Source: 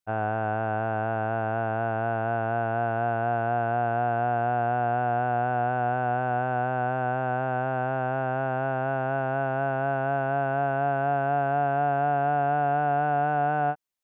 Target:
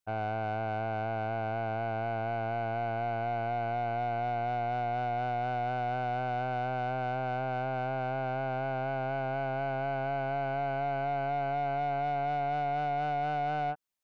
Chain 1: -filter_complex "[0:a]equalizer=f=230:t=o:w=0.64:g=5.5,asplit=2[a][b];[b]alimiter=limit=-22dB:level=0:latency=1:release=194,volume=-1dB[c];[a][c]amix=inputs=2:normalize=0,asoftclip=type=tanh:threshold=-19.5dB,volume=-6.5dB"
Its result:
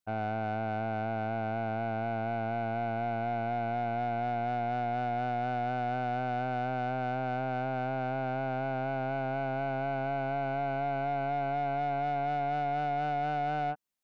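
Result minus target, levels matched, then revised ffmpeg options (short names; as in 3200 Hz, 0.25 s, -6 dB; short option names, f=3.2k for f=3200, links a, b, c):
250 Hz band +4.0 dB
-filter_complex "[0:a]asplit=2[a][b];[b]alimiter=limit=-22dB:level=0:latency=1:release=194,volume=-1dB[c];[a][c]amix=inputs=2:normalize=0,asoftclip=type=tanh:threshold=-19.5dB,volume=-6.5dB"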